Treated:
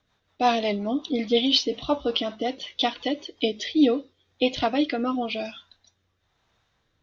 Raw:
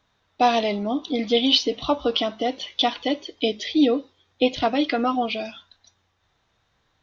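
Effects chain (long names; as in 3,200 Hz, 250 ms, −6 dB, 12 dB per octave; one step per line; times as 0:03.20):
rotating-speaker cabinet horn 5.5 Hz, later 1 Hz, at 0:03.32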